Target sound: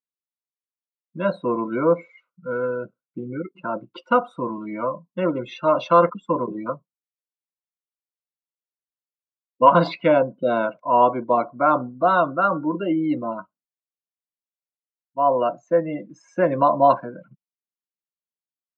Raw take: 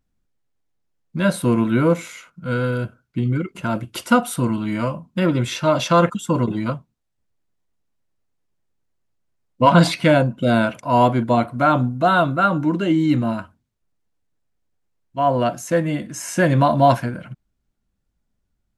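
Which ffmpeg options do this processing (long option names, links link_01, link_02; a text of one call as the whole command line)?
ffmpeg -i in.wav -af "afftdn=noise_reduction=25:noise_floor=-29,highpass=frequency=190:width=0.5412,highpass=frequency=190:width=1.3066,equalizer=frequency=230:width_type=q:width=4:gain=-8,equalizer=frequency=530:width_type=q:width=4:gain=5,equalizer=frequency=1100:width_type=q:width=4:gain=8,equalizer=frequency=1700:width_type=q:width=4:gain=-7,equalizer=frequency=3200:width_type=q:width=4:gain=-7,lowpass=frequency=4000:width=0.5412,lowpass=frequency=4000:width=1.3066,volume=-3dB" out.wav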